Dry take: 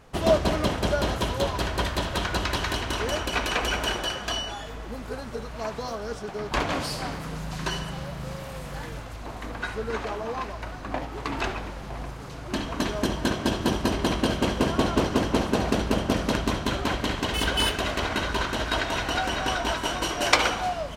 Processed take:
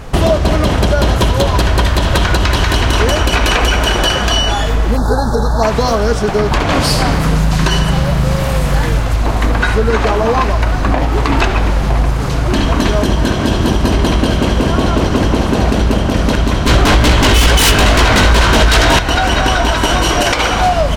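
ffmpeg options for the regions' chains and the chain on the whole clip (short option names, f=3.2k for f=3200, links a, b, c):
-filter_complex "[0:a]asettb=1/sr,asplit=3[a][b][c];[a]atrim=end=4.974[d];[b]atrim=start=4.97:end=5.63,asetpts=PTS-STARTPTS,afade=t=in:d=0.004:c=qsin,afade=t=out:st=0.656:d=0.004:c=qsin,asuperstop=centerf=2500:order=12:qfactor=1.3,equalizer=f=840:t=o:w=0.24:g=10[e];[c]atrim=start=5.626[f];[d][e]acrossfade=d=0.004:c1=hsin:c2=qsin[g];[g][f]acrossfade=d=0.004:c1=qsin:c2=hsin,asettb=1/sr,asplit=3[h][i][j];[h]atrim=end=16.674[k];[i]atrim=start=16.67:end=18.99,asetpts=PTS-STARTPTS,afade=t=in:d=0.004:c=qsin,afade=t=out:st=2.316:d=0.004:c=qsin,flanger=delay=16:depth=4.4:speed=2.2,aeval=exprs='0.211*sin(PI/2*4.47*val(0)/0.211)':c=same[l];[j]atrim=start=18.986[m];[k][l]acrossfade=d=0.004:c1=hsin:c2=qsin[n];[n][m]acrossfade=d=0.004:c1=qsin:c2=hsin,lowshelf=f=110:g=9.5,acompressor=threshold=-27dB:ratio=6,alimiter=level_in=20.5dB:limit=-1dB:release=50:level=0:latency=1,volume=-1dB"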